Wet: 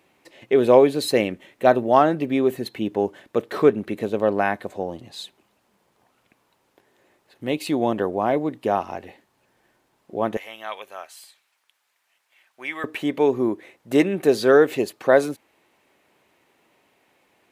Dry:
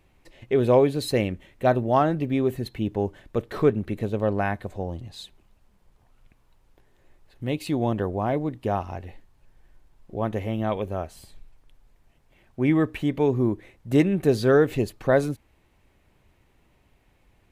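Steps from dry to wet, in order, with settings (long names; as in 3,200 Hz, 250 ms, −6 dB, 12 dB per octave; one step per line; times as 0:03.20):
high-pass filter 250 Hz 12 dB per octave, from 0:10.37 1,300 Hz, from 0:12.84 320 Hz
level +5 dB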